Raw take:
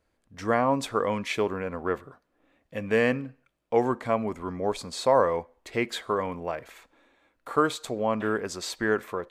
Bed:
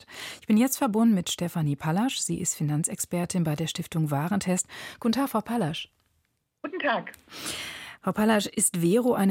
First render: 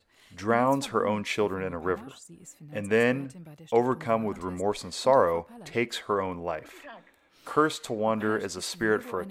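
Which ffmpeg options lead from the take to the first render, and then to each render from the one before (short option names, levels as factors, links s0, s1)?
-filter_complex "[1:a]volume=0.1[s0];[0:a][s0]amix=inputs=2:normalize=0"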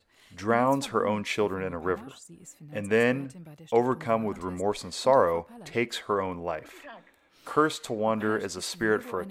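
-af anull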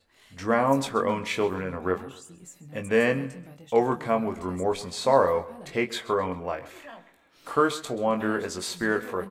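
-filter_complex "[0:a]asplit=2[s0][s1];[s1]adelay=22,volume=0.501[s2];[s0][s2]amix=inputs=2:normalize=0,aecho=1:1:132|264|396:0.133|0.0493|0.0183"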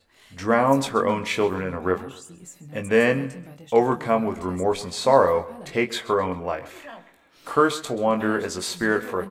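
-af "volume=1.5"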